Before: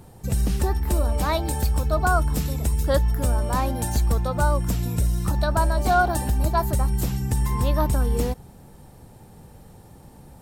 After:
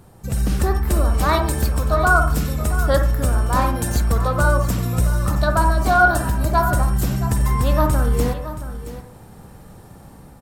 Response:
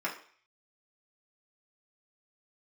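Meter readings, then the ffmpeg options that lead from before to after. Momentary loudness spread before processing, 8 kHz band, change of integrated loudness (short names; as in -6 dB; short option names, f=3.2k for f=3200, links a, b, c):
4 LU, +3.0 dB, +4.5 dB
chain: -filter_complex "[0:a]equalizer=f=1.3k:t=o:w=0.75:g=4.5,bandreject=f=880:w=27,dynaudnorm=f=160:g=5:m=5dB,aecho=1:1:674:0.224,asplit=2[a][b];[1:a]atrim=start_sample=2205,lowpass=3.1k,adelay=47[c];[b][c]afir=irnorm=-1:irlink=0,volume=-11dB[d];[a][d]amix=inputs=2:normalize=0,volume=-1.5dB"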